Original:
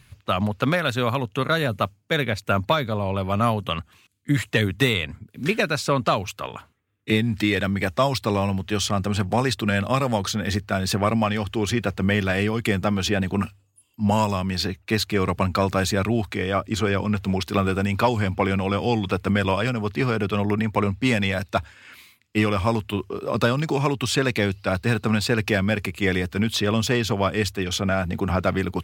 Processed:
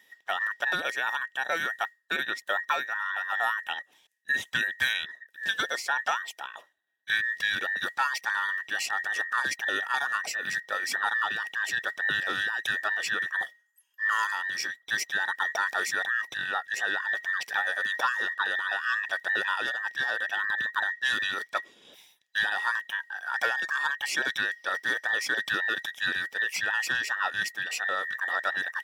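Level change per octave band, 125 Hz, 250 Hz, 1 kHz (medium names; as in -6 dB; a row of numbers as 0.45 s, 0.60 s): under -30 dB, -26.5 dB, -5.5 dB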